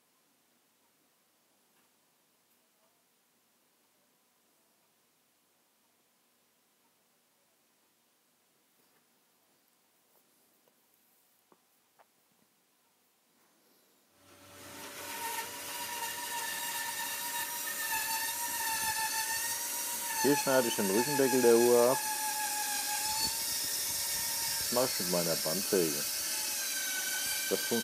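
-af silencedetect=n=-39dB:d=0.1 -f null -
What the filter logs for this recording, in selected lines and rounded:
silence_start: 0.00
silence_end: 14.63 | silence_duration: 14.63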